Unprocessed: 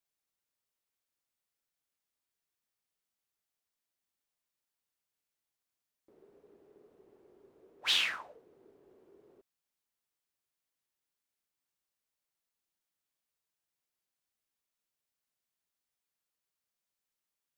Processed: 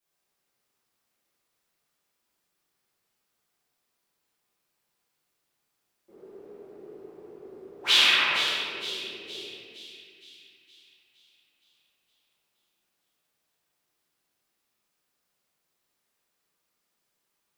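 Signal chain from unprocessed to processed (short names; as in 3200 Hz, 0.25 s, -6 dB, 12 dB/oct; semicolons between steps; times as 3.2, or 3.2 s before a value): low shelf 69 Hz -12 dB; split-band echo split 2800 Hz, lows 93 ms, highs 0.465 s, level -8 dB; reverb RT60 2.1 s, pre-delay 5 ms, DRR -12.5 dB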